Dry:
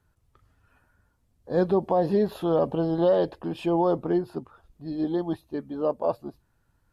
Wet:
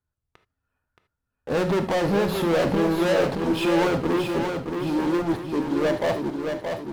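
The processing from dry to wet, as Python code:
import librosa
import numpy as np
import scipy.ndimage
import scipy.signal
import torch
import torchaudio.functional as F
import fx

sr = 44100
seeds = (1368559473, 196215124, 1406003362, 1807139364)

p1 = fx.leveller(x, sr, passes=5)
p2 = p1 + fx.echo_feedback(p1, sr, ms=624, feedback_pct=44, wet_db=-5.5, dry=0)
p3 = fx.rev_gated(p2, sr, seeds[0], gate_ms=100, shape='flat', drr_db=8.0)
y = p3 * 10.0 ** (-7.0 / 20.0)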